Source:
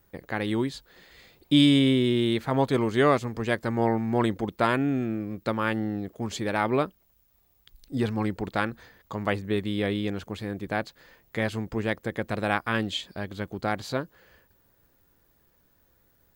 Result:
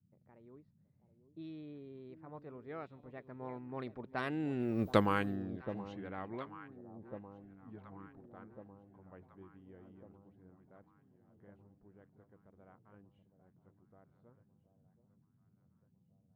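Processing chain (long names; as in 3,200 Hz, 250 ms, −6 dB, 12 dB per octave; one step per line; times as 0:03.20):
source passing by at 0:04.87, 34 m/s, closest 3.2 metres
noise in a band 86–220 Hz −75 dBFS
on a send: delay that swaps between a low-pass and a high-pass 725 ms, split 890 Hz, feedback 70%, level −12.5 dB
on the sum: low-pass that shuts in the quiet parts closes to 880 Hz, open at −34.5 dBFS
level +3.5 dB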